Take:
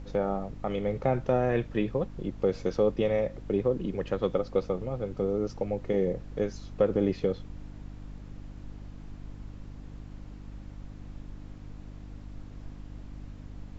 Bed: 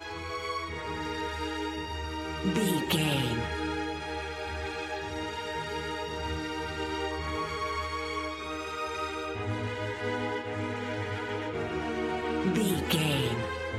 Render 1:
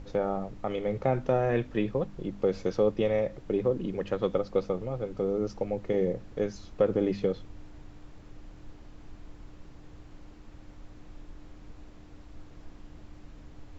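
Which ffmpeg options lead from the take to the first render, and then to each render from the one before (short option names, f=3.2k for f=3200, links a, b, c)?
-af "bandreject=f=50:t=h:w=4,bandreject=f=100:t=h:w=4,bandreject=f=150:t=h:w=4,bandreject=f=200:t=h:w=4,bandreject=f=250:t=h:w=4"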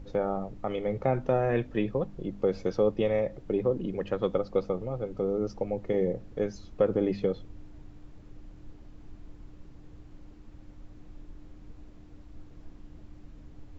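-af "afftdn=nr=6:nf=-51"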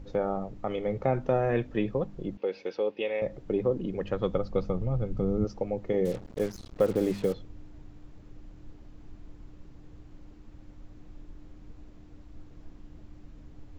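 -filter_complex "[0:a]asettb=1/sr,asplit=3[a][b][c];[a]atrim=end=2.374[d];[b]atrim=start=2.37:end=3.22,asetpts=PTS-STARTPTS,afade=t=in:d=0.004:c=qsin,afade=t=out:st=0.846:d=0.004:c=qsin,highpass=450,equalizer=f=660:t=q:w=4:g=-7,equalizer=f=1.2k:t=q:w=4:g=-9,equalizer=f=2.6k:t=q:w=4:g=8,lowpass=f=4.9k:w=0.5412,lowpass=f=4.9k:w=1.3066[e];[c]atrim=start=3.216[f];[d][e]acrossfade=d=0.004:c1=hsin:c2=qsin[g];[g][f]acrossfade=d=0.004:c1=qsin:c2=hsin,asettb=1/sr,asplit=3[h][i][j];[h]atrim=end=3.884[k];[i]atrim=start=3.88:end=5.45,asetpts=PTS-STARTPTS,afade=t=in:d=0.004:c=qsin,afade=t=out:st=1.566:d=0.004:c=qsin,asubboost=boost=9.5:cutoff=190[l];[j]atrim=start=5.446[m];[k][l]acrossfade=d=0.004:c1=hsin:c2=qsin[n];[n][m]acrossfade=d=0.004:c1=qsin:c2=hsin,asettb=1/sr,asplit=3[o][p][q];[o]atrim=end=6.054[r];[p]atrim=start=6.05:end=7.34,asetpts=PTS-STARTPTS,afade=t=in:d=0.004:c=qsin,afade=t=out:st=1.286:d=0.004:c=qsin,acrusher=bits=6:mix=0:aa=0.5[s];[q]atrim=start=7.336[t];[r][s]acrossfade=d=0.004:c1=hsin:c2=qsin[u];[u][t]acrossfade=d=0.004:c1=qsin:c2=hsin"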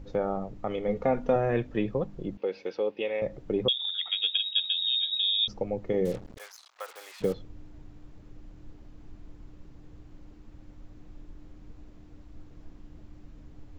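-filter_complex "[0:a]asettb=1/sr,asplit=3[a][b][c];[a]atrim=end=0.884[d];[b]atrim=start=0.88:end=1.36,asetpts=PTS-STARTPTS,afade=t=in:d=0.004:c=qsin,afade=t=out:st=0.476:d=0.004:c=qsin,aecho=1:1:4.2:0.65,atrim=end_sample=21168[e];[c]atrim=start=1.356[f];[d][e]acrossfade=d=0.004:c1=hsin:c2=qsin[g];[g][f]acrossfade=d=0.004:c1=qsin:c2=hsin,asettb=1/sr,asplit=3[h][i][j];[h]atrim=end=3.684[k];[i]atrim=start=3.68:end=5.48,asetpts=PTS-STARTPTS,afade=t=in:d=0.004:c=qsin,afade=t=out:st=1.796:d=0.004:c=qsin,lowpass=f=3.2k:t=q:w=0.5098,lowpass=f=3.2k:t=q:w=0.6013,lowpass=f=3.2k:t=q:w=0.9,lowpass=f=3.2k:t=q:w=2.563,afreqshift=-3800[l];[j]atrim=start=5.476[m];[k][l]acrossfade=d=0.004:c1=hsin:c2=qsin[n];[n][m]acrossfade=d=0.004:c1=qsin:c2=hsin,asplit=3[o][p][q];[o]afade=t=out:st=6.36:d=0.02[r];[p]highpass=f=910:w=0.5412,highpass=f=910:w=1.3066,afade=t=in:st=6.36:d=0.02,afade=t=out:st=7.2:d=0.02[s];[q]afade=t=in:st=7.2:d=0.02[t];[r][s][t]amix=inputs=3:normalize=0"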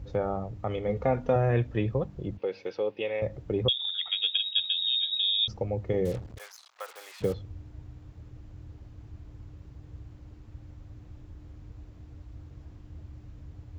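-af "highpass=67,lowshelf=f=140:t=q:w=1.5:g=9.5"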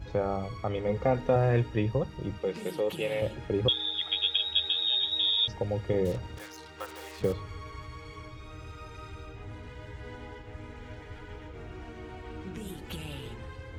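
-filter_complex "[1:a]volume=-13.5dB[a];[0:a][a]amix=inputs=2:normalize=0"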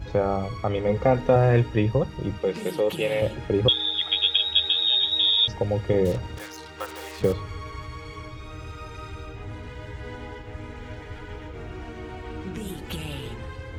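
-af "volume=6dB"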